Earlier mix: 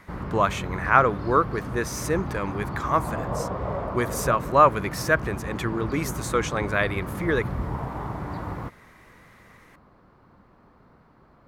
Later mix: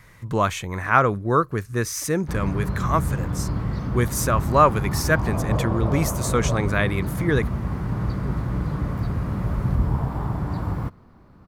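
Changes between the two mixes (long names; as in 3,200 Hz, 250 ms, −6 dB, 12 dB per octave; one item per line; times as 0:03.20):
background: entry +2.20 s
master: add bass and treble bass +9 dB, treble +6 dB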